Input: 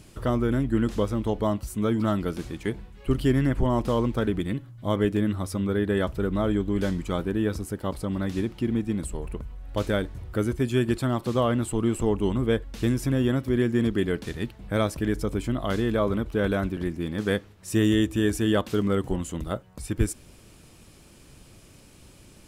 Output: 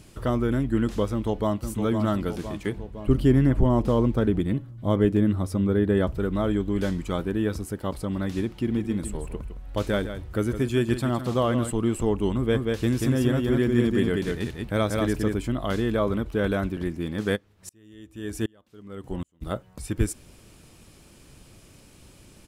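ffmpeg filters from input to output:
-filter_complex "[0:a]asplit=2[a][b];[b]afade=t=in:st=1.11:d=0.01,afade=t=out:st=1.64:d=0.01,aecho=0:1:510|1020|1530|2040|2550|3060|3570|4080:0.446684|0.26801|0.160806|0.0964837|0.0578902|0.0347341|0.0208405|0.0125043[c];[a][c]amix=inputs=2:normalize=0,asettb=1/sr,asplit=3[d][e][f];[d]atrim=end=2.774[g];[e]atrim=start=2.77:end=6.18,asetpts=PTS-STARTPTS,afade=t=in:d=0.004:c=qsin,afade=t=out:st=3.406:d=0.004:c=qsin,tiltshelf=f=820:g=4[h];[f]atrim=start=6.176[i];[g][h]acrossfade=d=0.004:c1=hsin:c2=qsin[j];[j][i]acrossfade=d=0.004:c1=qsin:c2=hsin,asettb=1/sr,asplit=3[k][l][m];[k]atrim=end=8.584[n];[l]atrim=start=8.58:end=11.71,asetpts=PTS-STARTPTS,afade=t=in:d=0.004:c=qsin,afade=t=out:st=3.126:d=0.004:c=qsin,aecho=1:1:160:0.299,atrim=end_sample=138033[o];[m]atrim=start=11.706[p];[n][o]acrossfade=d=0.004:c1=hsin:c2=qsin[q];[q][p]acrossfade=d=0.004:c1=qsin:c2=hsin,asplit=3[r][s][t];[r]afade=t=out:st=12.53:d=0.02[u];[s]aecho=1:1:186:0.708,afade=t=in:st=12.53:d=0.02,afade=t=out:st=15.33:d=0.02[v];[t]afade=t=in:st=15.33:d=0.02[w];[u][v][w]amix=inputs=3:normalize=0,asplit=3[x][y][z];[x]afade=t=out:st=17.35:d=0.02[aa];[y]aeval=exprs='val(0)*pow(10,-39*if(lt(mod(-1.3*n/s,1),2*abs(-1.3)/1000),1-mod(-1.3*n/s,1)/(2*abs(-1.3)/1000),(mod(-1.3*n/s,1)-2*abs(-1.3)/1000)/(1-2*abs(-1.3)/1000))/20)':c=same,afade=t=in:st=17.35:d=0.02,afade=t=out:st=19.41:d=0.02[ab];[z]afade=t=in:st=19.41:d=0.02[ac];[aa][ab][ac]amix=inputs=3:normalize=0"

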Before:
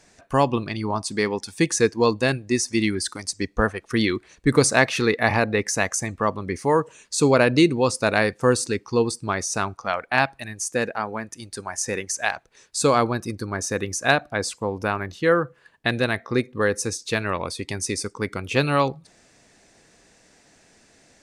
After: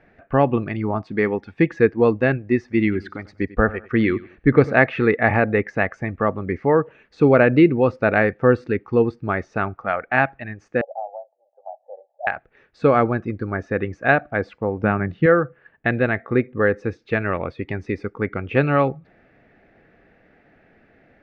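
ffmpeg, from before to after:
-filter_complex "[0:a]asettb=1/sr,asplit=3[a][b][c];[a]atrim=end=2.784[d];[b]atrim=start=2.78:end=4.79,asetpts=PTS-STARTPTS,afade=t=in:d=0.004:c=qsin,afade=t=out:st=2.006:d=0.004:c=qsin,aecho=1:1:95|190:0.112|0.0325,atrim=end_sample=88641[e];[c]atrim=start=4.786[f];[d][e]acrossfade=d=0.004:c1=hsin:c2=qsin[g];[g][f]acrossfade=d=0.004:c1=qsin:c2=hsin,asettb=1/sr,asplit=3[h][i][j];[h]atrim=end=10.814[k];[i]atrim=start=10.81:end=12.27,asetpts=PTS-STARTPTS,afade=t=in:d=0.004:c=qsin,afade=t=out:st=1.456:d=0.004:c=qsin,asuperpass=centerf=680:order=8:qfactor=2.4[l];[j]atrim=start=12.266[m];[k][l]acrossfade=d=0.004:c1=hsin:c2=qsin[n];[n][m]acrossfade=d=0.004:c1=qsin:c2=hsin,asettb=1/sr,asplit=3[o][p][q];[o]atrim=end=14.834[r];[p]atrim=start=14.83:end=15.26,asetpts=PTS-STARTPTS,afade=t=in:d=0.004:c=qsin,afade=t=out:st=0.426:d=0.004:c=qsin,equalizer=f=160:w=1.2:g=10.5[s];[q]atrim=start=15.256[t];[r][s]acrossfade=d=0.004:c1=hsin:c2=qsin[u];[u][t]acrossfade=d=0.004:c1=qsin:c2=hsin,lowpass=f=2.2k:w=0.5412,lowpass=f=2.2k:w=1.3066,equalizer=f=1k:w=6.6:g=-12,volume=3.5dB"

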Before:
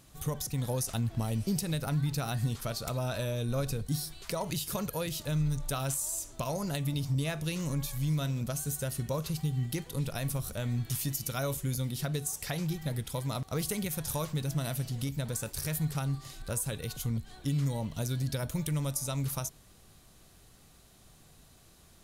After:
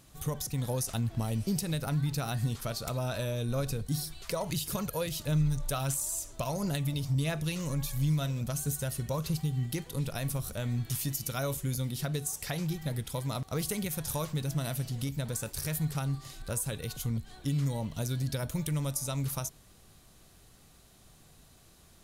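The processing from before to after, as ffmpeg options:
-filter_complex "[0:a]asplit=3[a][b][c];[a]afade=t=out:st=3.96:d=0.02[d];[b]aphaser=in_gain=1:out_gain=1:delay=2.1:decay=0.29:speed=1.5:type=triangular,afade=t=in:st=3.96:d=0.02,afade=t=out:st=9.37:d=0.02[e];[c]afade=t=in:st=9.37:d=0.02[f];[d][e][f]amix=inputs=3:normalize=0"

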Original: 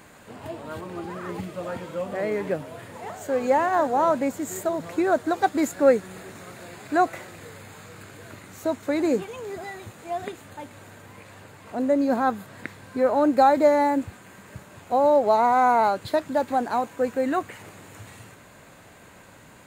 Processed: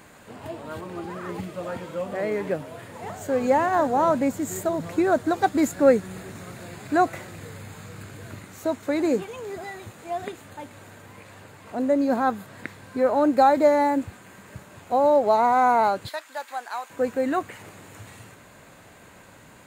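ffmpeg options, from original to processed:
-filter_complex "[0:a]asettb=1/sr,asplit=3[a][b][c];[a]atrim=end=3.004[d];[b]atrim=start=3:end=8.45,asetpts=PTS-STARTPTS,afade=t=in:d=0.004:c=qsin,afade=t=out:st=5.446:d=0.004:c=qsin,bass=f=250:g=7,treble=f=4k:g=1[e];[c]atrim=start=8.446[f];[d][e]acrossfade=d=0.004:c1=hsin:c2=qsin[g];[g][f]acrossfade=d=0.004:c1=qsin:c2=hsin,asettb=1/sr,asplit=3[h][i][j];[h]atrim=end=16.094[k];[i]atrim=start=16.09:end=16.9,asetpts=PTS-STARTPTS,afade=t=in:d=0.004:c=qsin,afade=t=out:st=0.806:d=0.004:c=qsin,highpass=1.2k[l];[j]atrim=start=16.896[m];[k][l]acrossfade=d=0.004:c1=hsin:c2=qsin[n];[n][m]acrossfade=d=0.004:c1=qsin:c2=hsin"

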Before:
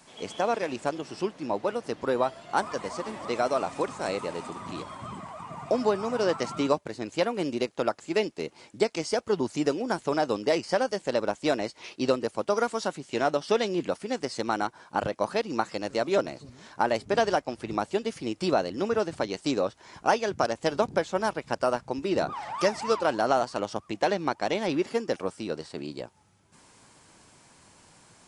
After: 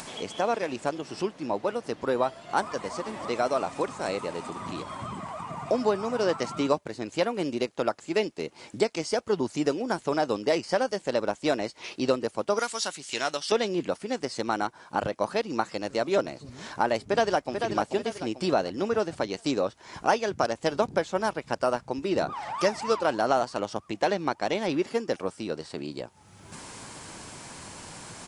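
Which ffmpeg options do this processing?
-filter_complex "[0:a]asettb=1/sr,asplit=3[a][b][c];[a]atrim=end=12.594[d];[b]atrim=start=12.59:end=13.52,asetpts=PTS-STARTPTS,afade=t=in:d=0.004:c=qsin,afade=t=out:st=0.926:d=0.004:c=qsin,tiltshelf=f=1.4k:g=-9.5[e];[c]atrim=start=13.516[f];[d][e]acrossfade=d=0.004:c1=hsin:c2=qsin[g];[g][f]acrossfade=d=0.004:c1=qsin:c2=hsin,asplit=2[h][i];[i]afade=t=in:st=17.01:d=0.01,afade=t=out:st=17.61:d=0.01,aecho=0:1:440|880|1320|1760|2200:0.501187|0.200475|0.08019|0.032076|0.0128304[j];[h][j]amix=inputs=2:normalize=0,acompressor=mode=upward:threshold=-30dB:ratio=2.5"

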